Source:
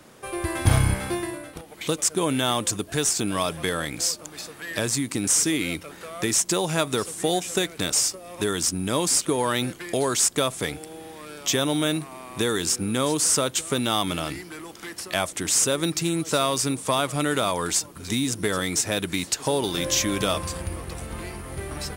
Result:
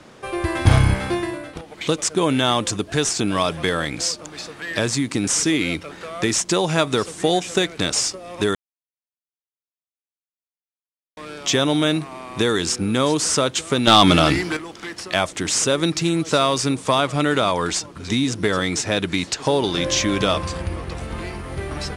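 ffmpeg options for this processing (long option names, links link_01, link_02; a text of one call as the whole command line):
ffmpeg -i in.wav -filter_complex "[0:a]asettb=1/sr,asplit=3[link_01][link_02][link_03];[link_01]atrim=end=13.874[link_04];[link_02]atrim=start=13.87:end=14.57,asetpts=PTS-STARTPTS,afade=type=in:duration=0.004:curve=qsin,afade=type=out:start_time=0.696:duration=0.004:curve=qsin,aeval=exprs='0.376*sin(PI/2*2*val(0)/0.376)':channel_layout=same[link_05];[link_03]atrim=start=14.566[link_06];[link_04][link_05]acrossfade=duration=0.004:curve1=hsin:curve2=qsin[link_07];[link_07][link_06]acrossfade=duration=0.004:curve1=qsin:curve2=hsin,asettb=1/sr,asplit=3[link_08][link_09][link_10];[link_08]atrim=end=17.004[link_11];[link_09]atrim=start=17:end=21.01,asetpts=PTS-STARTPTS,afade=type=in:duration=0.004:curve=qsin,afade=type=out:start_time=4.006:duration=0.004:curve=qsin,highshelf=frequency=11000:gain=-7.5[link_12];[link_10]atrim=start=21.006[link_13];[link_11][link_12]acrossfade=duration=0.004:curve1=hsin:curve2=qsin[link_14];[link_14][link_13]acrossfade=duration=0.004:curve1=qsin:curve2=hsin,asplit=3[link_15][link_16][link_17];[link_15]atrim=end=8.55,asetpts=PTS-STARTPTS,afade=type=out:start_time=8.546:duration=0.004:curve=hsin[link_18];[link_16]atrim=start=8.55:end=11.17,asetpts=PTS-STARTPTS,volume=0[link_19];[link_17]atrim=start=11.17,asetpts=PTS-STARTPTS,afade=type=in:duration=0.004:curve=hsin[link_20];[link_18][link_19][link_20]concat=n=3:v=0:a=1,lowpass=6000,volume=5dB" out.wav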